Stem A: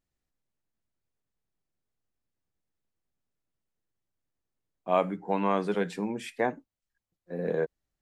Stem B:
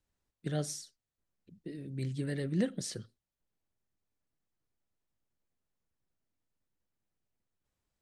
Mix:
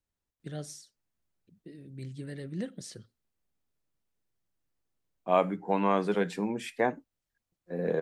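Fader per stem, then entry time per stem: +0.5, -5.0 dB; 0.40, 0.00 s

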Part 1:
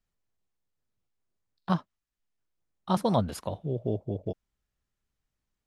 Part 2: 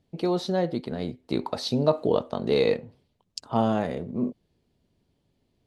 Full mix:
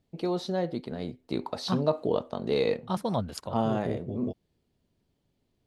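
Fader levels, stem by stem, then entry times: -4.0, -4.0 dB; 0.00, 0.00 s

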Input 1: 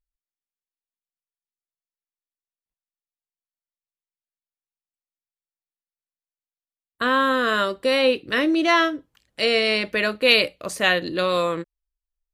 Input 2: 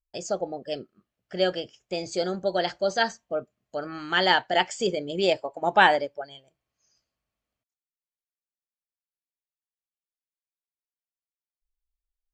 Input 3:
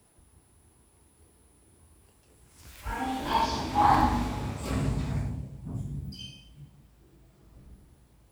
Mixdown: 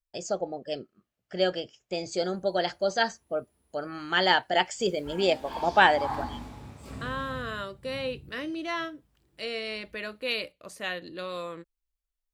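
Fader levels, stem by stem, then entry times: -14.0, -1.5, -11.0 dB; 0.00, 0.00, 2.20 s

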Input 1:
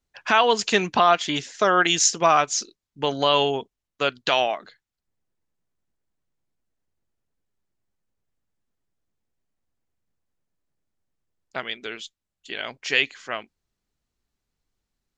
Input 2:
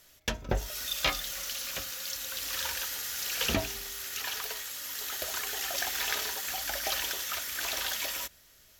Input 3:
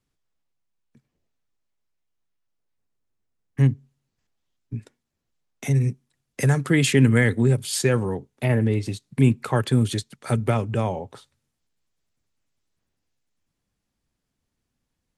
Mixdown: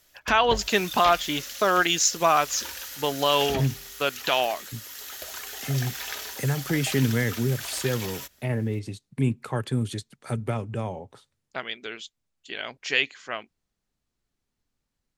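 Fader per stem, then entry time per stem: -2.5, -3.0, -6.5 dB; 0.00, 0.00, 0.00 s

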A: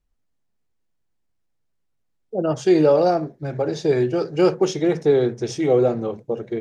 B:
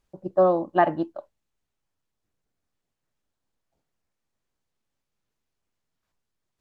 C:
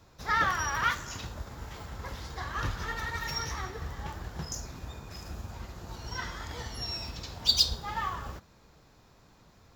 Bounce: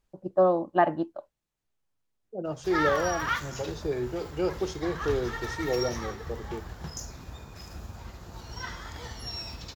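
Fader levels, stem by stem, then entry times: -11.5, -2.5, -1.0 dB; 0.00, 0.00, 2.45 s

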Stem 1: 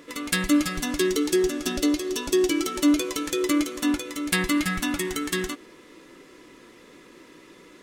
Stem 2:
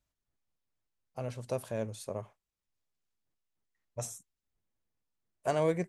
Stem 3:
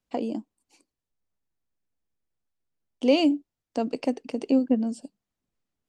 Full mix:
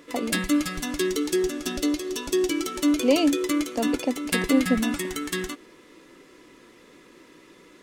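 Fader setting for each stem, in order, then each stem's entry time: -2.0 dB, off, 0.0 dB; 0.00 s, off, 0.00 s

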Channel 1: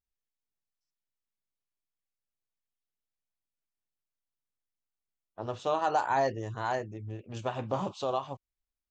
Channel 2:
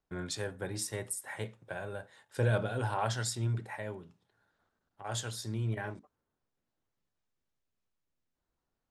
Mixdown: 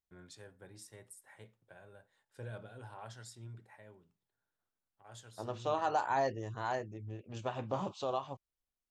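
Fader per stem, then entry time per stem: -4.5, -16.5 dB; 0.00, 0.00 s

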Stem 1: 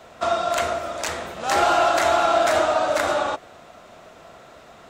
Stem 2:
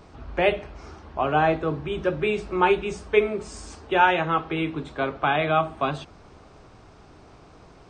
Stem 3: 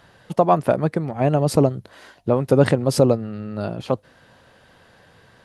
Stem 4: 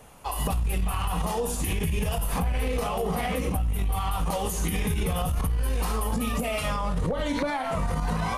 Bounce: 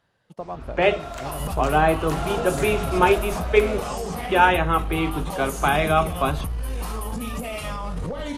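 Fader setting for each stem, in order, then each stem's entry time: -13.0, +2.0, -17.5, -2.5 dB; 0.60, 0.40, 0.00, 1.00 s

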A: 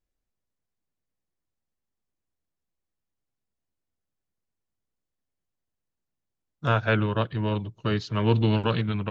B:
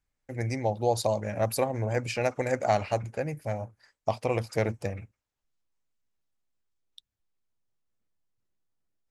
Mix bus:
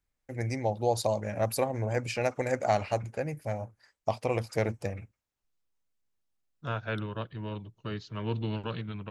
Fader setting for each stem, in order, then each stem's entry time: -10.5, -1.5 dB; 0.00, 0.00 s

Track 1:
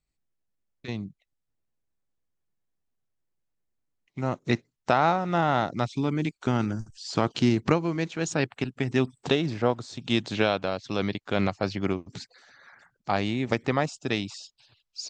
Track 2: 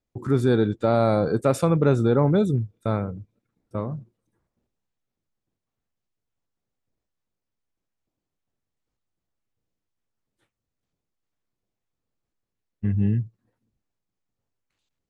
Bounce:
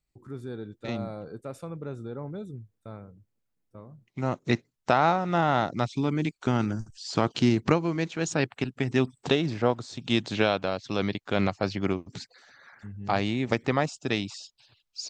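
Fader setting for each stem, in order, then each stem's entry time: 0.0, -17.5 dB; 0.00, 0.00 s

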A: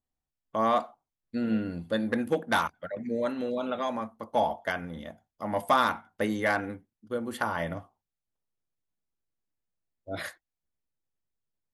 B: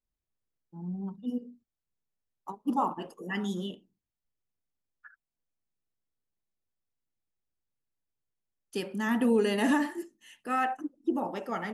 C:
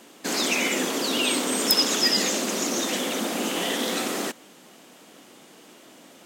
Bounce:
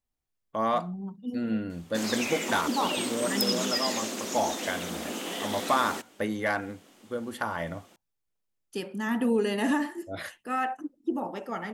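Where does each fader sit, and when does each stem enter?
-1.5, -0.5, -8.0 dB; 0.00, 0.00, 1.70 s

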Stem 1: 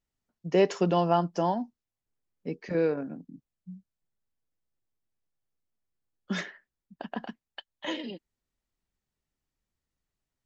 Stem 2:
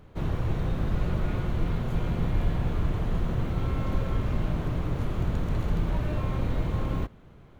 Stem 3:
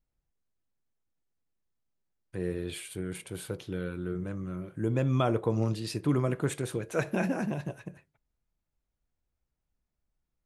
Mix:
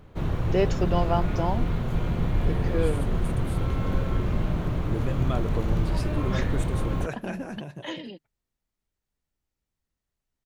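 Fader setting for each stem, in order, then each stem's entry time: -1.5, +1.5, -4.5 dB; 0.00, 0.00, 0.10 s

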